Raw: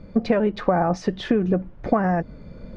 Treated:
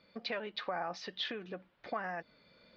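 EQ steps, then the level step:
resonant band-pass 4,100 Hz, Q 1.9
high-frequency loss of the air 170 metres
+5.0 dB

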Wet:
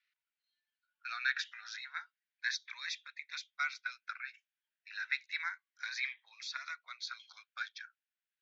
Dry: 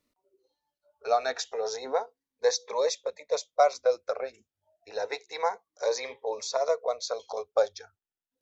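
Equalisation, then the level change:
Chebyshev high-pass filter 1,500 Hz, order 5
low-pass filter 3,100 Hz 12 dB per octave
high-frequency loss of the air 110 metres
+7.0 dB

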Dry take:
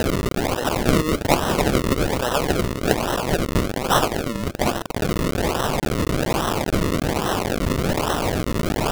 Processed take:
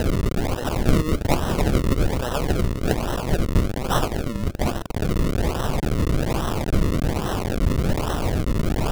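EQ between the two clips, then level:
low-shelf EQ 110 Hz +9.5 dB
low-shelf EQ 340 Hz +4 dB
−6.0 dB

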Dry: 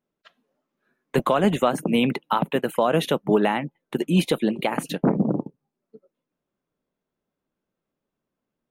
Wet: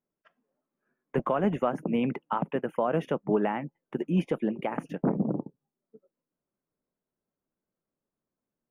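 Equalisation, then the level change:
moving average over 11 samples
−6.0 dB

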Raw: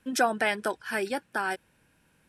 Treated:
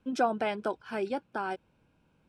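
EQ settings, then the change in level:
head-to-tape spacing loss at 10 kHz 21 dB
parametric band 1,800 Hz −14 dB 0.33 octaves
0.0 dB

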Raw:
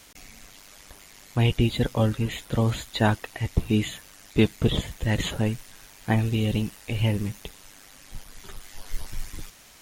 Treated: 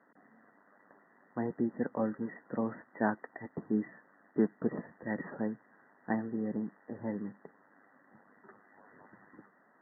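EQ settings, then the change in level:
Chebyshev high-pass filter 210 Hz, order 3
linear-phase brick-wall low-pass 2,000 Hz
high-frequency loss of the air 250 metres
−6.0 dB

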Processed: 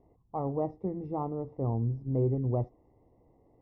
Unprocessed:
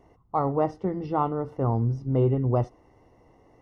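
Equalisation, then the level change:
moving average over 29 samples
−5.0 dB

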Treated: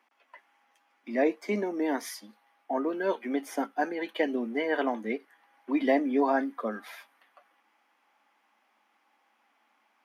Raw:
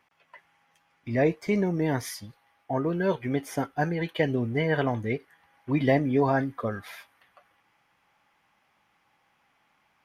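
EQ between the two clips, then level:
Chebyshev high-pass with heavy ripple 210 Hz, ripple 3 dB
0.0 dB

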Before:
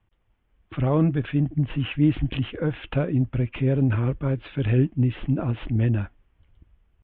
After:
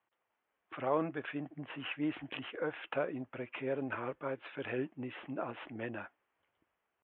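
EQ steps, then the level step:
high-pass filter 640 Hz 12 dB per octave
high-frequency loss of the air 460 metres
0.0 dB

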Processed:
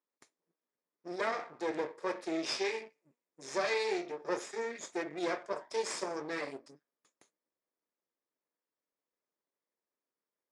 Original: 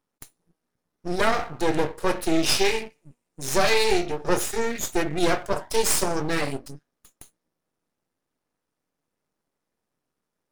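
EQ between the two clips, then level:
loudspeaker in its box 380–6,400 Hz, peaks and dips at 770 Hz −6 dB, 1,400 Hz −5 dB, 2,900 Hz −10 dB, 4,100 Hz −7 dB, 6,100 Hz −5 dB
−8.0 dB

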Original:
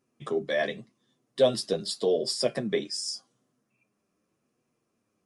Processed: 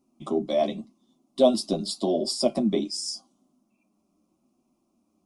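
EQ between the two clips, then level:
tilt shelving filter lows +4.5 dB, about 780 Hz
phaser with its sweep stopped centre 460 Hz, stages 6
+6.5 dB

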